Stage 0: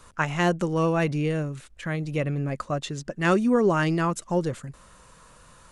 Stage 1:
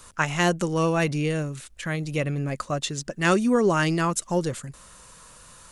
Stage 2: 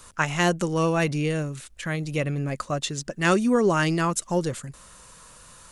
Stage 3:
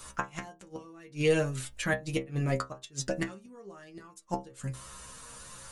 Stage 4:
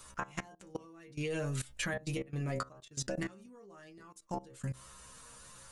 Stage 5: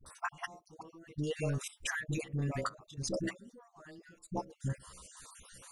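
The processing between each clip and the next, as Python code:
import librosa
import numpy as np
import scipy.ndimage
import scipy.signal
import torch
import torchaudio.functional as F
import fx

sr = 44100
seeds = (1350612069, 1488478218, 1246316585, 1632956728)

y1 = fx.high_shelf(x, sr, hz=3300.0, db=10.0)
y2 = y1
y3 = fx.gate_flip(y2, sr, shuts_db=-17.0, range_db=-29)
y3 = fx.stiff_resonator(y3, sr, f0_hz=64.0, decay_s=0.27, stiffness=0.002)
y3 = F.gain(torch.from_numpy(y3), 8.5).numpy()
y4 = fx.level_steps(y3, sr, step_db=19)
y4 = F.gain(torch.from_numpy(y4), 3.0).numpy()
y5 = fx.spec_dropout(y4, sr, seeds[0], share_pct=43)
y5 = fx.dispersion(y5, sr, late='highs', ms=62.0, hz=510.0)
y5 = F.gain(torch.from_numpy(y5), 2.5).numpy()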